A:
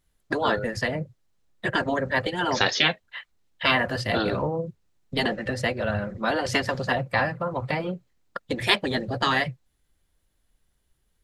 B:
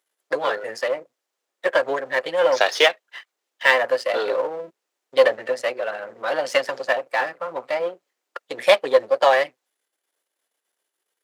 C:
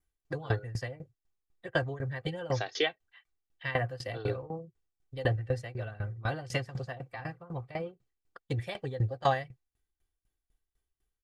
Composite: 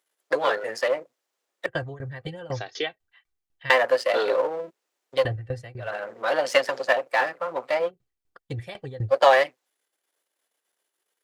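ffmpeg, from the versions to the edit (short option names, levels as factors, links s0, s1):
-filter_complex "[2:a]asplit=3[s0][s1][s2];[1:a]asplit=4[s3][s4][s5][s6];[s3]atrim=end=1.662[s7];[s0]atrim=start=1.658:end=3.702[s8];[s4]atrim=start=3.698:end=5.28[s9];[s1]atrim=start=5.12:end=5.95[s10];[s5]atrim=start=5.79:end=7.91[s11];[s2]atrim=start=7.85:end=9.14[s12];[s6]atrim=start=9.08[s13];[s7][s8]acrossfade=d=0.004:c1=hsin:c2=hsin[s14];[s14][s9]acrossfade=d=0.004:c1=hsin:c2=hsin[s15];[s15][s10]acrossfade=d=0.16:c1=tri:c2=tri[s16];[s16][s11]acrossfade=d=0.16:c1=tri:c2=tri[s17];[s17][s12]acrossfade=d=0.06:c1=tri:c2=tri[s18];[s18][s13]acrossfade=d=0.06:c1=tri:c2=tri"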